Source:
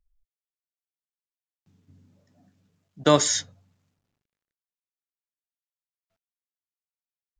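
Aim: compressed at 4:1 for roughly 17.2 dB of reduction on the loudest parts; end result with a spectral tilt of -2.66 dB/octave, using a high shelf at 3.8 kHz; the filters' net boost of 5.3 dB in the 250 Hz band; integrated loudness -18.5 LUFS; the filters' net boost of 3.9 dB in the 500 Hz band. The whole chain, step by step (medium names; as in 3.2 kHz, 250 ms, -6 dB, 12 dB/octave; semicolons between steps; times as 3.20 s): peaking EQ 250 Hz +5.5 dB; peaking EQ 500 Hz +3.5 dB; treble shelf 3.8 kHz +7 dB; compression 4:1, threshold -30 dBFS; trim +13.5 dB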